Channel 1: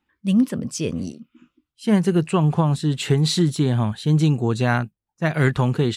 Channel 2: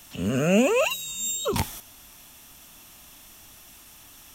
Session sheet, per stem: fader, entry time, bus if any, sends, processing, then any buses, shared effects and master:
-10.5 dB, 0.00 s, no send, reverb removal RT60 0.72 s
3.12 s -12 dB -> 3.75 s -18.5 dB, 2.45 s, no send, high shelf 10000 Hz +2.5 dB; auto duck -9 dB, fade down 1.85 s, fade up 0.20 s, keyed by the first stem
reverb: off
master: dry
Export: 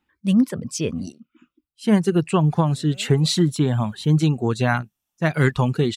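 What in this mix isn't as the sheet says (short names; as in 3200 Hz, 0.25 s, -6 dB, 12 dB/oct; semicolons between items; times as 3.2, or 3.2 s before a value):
stem 1 -10.5 dB -> +1.0 dB; stem 2 -12.0 dB -> -18.0 dB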